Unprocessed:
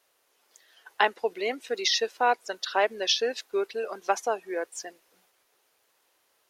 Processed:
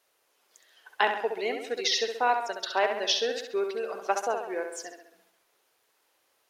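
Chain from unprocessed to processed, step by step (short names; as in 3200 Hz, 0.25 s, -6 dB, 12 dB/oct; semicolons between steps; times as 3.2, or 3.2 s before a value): tape echo 67 ms, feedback 58%, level -5.5 dB, low-pass 4600 Hz; gain -2 dB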